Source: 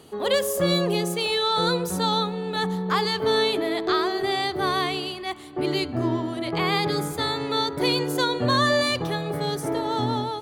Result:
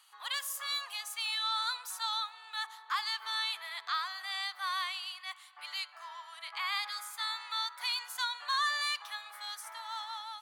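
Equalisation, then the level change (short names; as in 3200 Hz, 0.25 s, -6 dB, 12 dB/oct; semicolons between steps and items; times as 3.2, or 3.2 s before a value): steep high-pass 990 Hz 36 dB/oct; -7.5 dB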